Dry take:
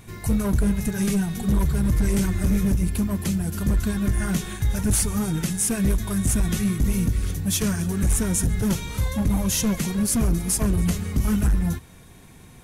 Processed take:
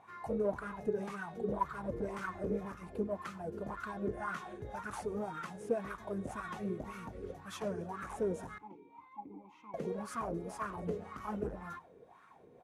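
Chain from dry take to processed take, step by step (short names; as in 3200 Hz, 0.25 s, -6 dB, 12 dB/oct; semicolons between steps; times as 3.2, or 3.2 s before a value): 8.58–9.74 vowel filter u; on a send: echo 0.1 s -22.5 dB; on the sum: wah 1.9 Hz 430–1300 Hz, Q 6.5; gain +6 dB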